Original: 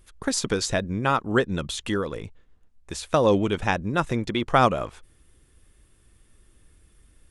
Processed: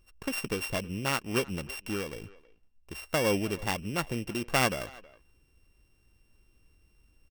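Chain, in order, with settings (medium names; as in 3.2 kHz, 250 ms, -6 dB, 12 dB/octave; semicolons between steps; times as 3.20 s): sorted samples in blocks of 16 samples; speakerphone echo 320 ms, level -20 dB; trim -7.5 dB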